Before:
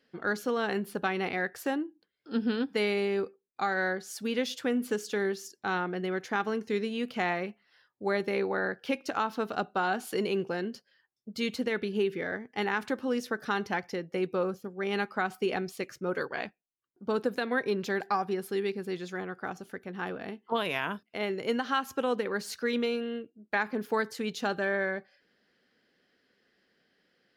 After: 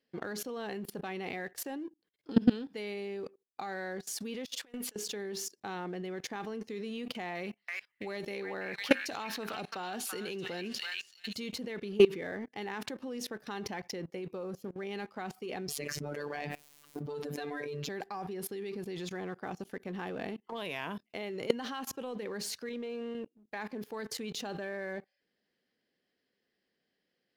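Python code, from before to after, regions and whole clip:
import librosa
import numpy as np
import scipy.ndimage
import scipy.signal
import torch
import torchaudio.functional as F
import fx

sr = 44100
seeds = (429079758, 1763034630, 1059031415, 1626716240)

y = fx.chain(x, sr, fx.highpass(hz=1100.0, slope=6),
    fx.over_compress(threshold_db=-43.0, ratio=-0.5), at=(4.45, 4.96))
y = fx.chain(y, sr, fx.high_shelf(hz=2100.0, db=8.0),
    fx.echo_stepped(ms=332, hz=1800.0, octaves=0.7, feedback_pct=70, wet_db=-3.0), at=(7.35, 11.36))
y = fx.chain(y, sr, fx.robotise(hz=146.0),
    fx.env_flatten(amount_pct=70), at=(15.68, 17.89))
y = fx.chain(y, sr, fx.lowpass(hz=1000.0, slope=6),
    fx.low_shelf(hz=410.0, db=-8.5), at=(22.69, 23.15))
y = fx.peak_eq(y, sr, hz=1400.0, db=-7.5, octaves=0.47)
y = fx.leveller(y, sr, passes=1)
y = fx.level_steps(y, sr, step_db=22)
y = y * 10.0 ** (5.5 / 20.0)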